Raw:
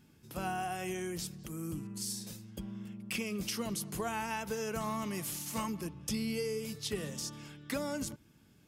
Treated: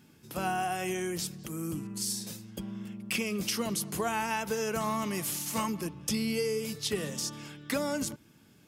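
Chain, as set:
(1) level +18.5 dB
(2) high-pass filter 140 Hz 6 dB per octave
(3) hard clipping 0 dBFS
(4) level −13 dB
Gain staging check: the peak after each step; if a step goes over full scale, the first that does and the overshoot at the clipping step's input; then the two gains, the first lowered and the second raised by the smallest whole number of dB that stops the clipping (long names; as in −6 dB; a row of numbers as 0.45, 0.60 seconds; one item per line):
−3.0, −3.0, −3.0, −16.0 dBFS
no step passes full scale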